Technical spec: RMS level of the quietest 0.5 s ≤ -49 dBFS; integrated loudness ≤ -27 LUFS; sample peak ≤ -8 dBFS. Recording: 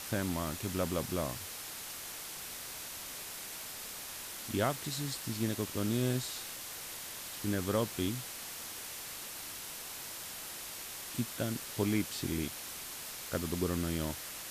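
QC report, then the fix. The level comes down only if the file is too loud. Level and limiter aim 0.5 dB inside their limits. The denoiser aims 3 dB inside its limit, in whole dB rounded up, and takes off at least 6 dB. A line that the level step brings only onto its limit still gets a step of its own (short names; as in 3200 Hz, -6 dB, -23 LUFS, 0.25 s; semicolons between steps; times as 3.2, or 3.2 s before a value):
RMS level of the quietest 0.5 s -44 dBFS: fail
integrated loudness -37.0 LUFS: OK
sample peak -18.0 dBFS: OK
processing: denoiser 8 dB, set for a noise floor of -44 dBFS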